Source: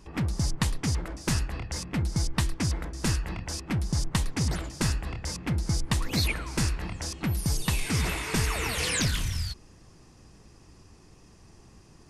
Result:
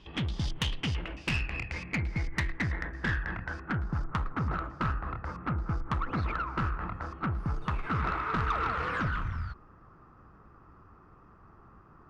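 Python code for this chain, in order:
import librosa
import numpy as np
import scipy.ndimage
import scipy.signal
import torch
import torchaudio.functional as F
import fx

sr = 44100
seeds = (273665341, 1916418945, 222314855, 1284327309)

y = fx.filter_sweep_lowpass(x, sr, from_hz=3300.0, to_hz=1300.0, start_s=0.45, end_s=4.21, q=7.5)
y = fx.tube_stage(y, sr, drive_db=20.0, bias=0.3)
y = F.gain(torch.from_numpy(y), -2.5).numpy()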